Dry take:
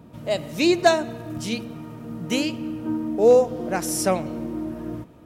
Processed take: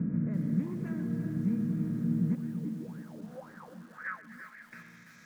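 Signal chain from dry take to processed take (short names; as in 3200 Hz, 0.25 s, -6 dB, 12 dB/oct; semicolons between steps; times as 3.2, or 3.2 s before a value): per-bin compression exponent 0.6; fixed phaser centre 2900 Hz, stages 6; sine folder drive 9 dB, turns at -8 dBFS; 2.35–4.73 wah 1.9 Hz 210–1800 Hz, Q 8.6; compressor 10:1, threshold -19 dBFS, peak gain reduction 9.5 dB; EQ curve 100 Hz 0 dB, 180 Hz +10 dB, 340 Hz -21 dB, 2000 Hz -2 dB, 4300 Hz -27 dB, 6400 Hz -9 dB; multi-head echo 0.125 s, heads all three, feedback 43%, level -18.5 dB; band-pass sweep 310 Hz -> 4500 Hz, 2.55–5.18; lo-fi delay 0.336 s, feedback 55%, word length 9-bit, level -10 dB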